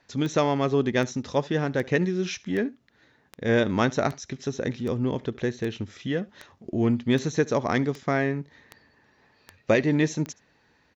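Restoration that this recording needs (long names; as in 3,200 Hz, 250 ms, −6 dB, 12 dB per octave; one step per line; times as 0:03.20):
click removal
echo removal 71 ms −23 dB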